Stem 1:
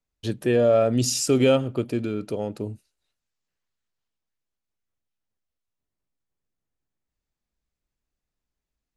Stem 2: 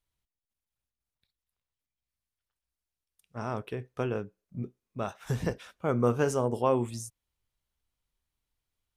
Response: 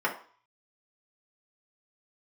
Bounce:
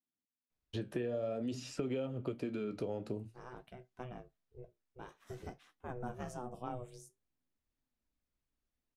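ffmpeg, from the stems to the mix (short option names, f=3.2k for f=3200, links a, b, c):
-filter_complex "[0:a]highshelf=f=6.6k:g=-10.5,acrossover=split=300|610|3000[a][b][c][d];[a]acompressor=threshold=-30dB:ratio=4[e];[b]acompressor=threshold=-26dB:ratio=4[f];[c]acompressor=threshold=-36dB:ratio=4[g];[d]acompressor=threshold=-51dB:ratio=4[h];[e][f][g][h]amix=inputs=4:normalize=0,adelay=500,volume=0dB[i];[1:a]aeval=exprs='val(0)*sin(2*PI*250*n/s)':c=same,volume=-9dB[j];[i][j]amix=inputs=2:normalize=0,flanger=delay=7.3:depth=9.8:regen=-60:speed=0.51:shape=triangular,acompressor=threshold=-35dB:ratio=4"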